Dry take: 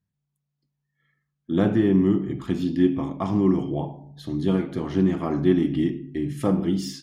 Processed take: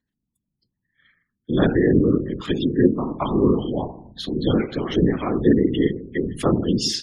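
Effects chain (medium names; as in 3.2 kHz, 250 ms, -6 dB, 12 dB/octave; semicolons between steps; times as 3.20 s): spectral gate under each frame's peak -30 dB strong; frequency weighting D; whisper effect; trim +4 dB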